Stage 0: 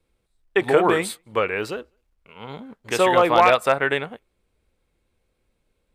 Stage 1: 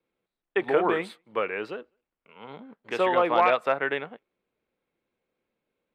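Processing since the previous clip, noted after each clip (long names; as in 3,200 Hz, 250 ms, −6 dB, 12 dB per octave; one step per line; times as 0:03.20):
three-way crossover with the lows and the highs turned down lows −23 dB, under 150 Hz, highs −19 dB, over 3,800 Hz
level −5.5 dB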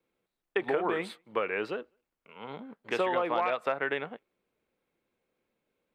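downward compressor 6 to 1, threshold −26 dBFS, peak gain reduction 10 dB
level +1 dB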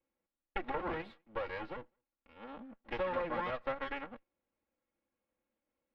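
lower of the sound and its delayed copy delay 3.6 ms
high-frequency loss of the air 340 metres
level −5 dB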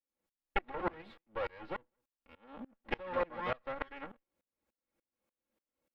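tremolo with a ramp in dB swelling 3.4 Hz, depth 27 dB
level +7 dB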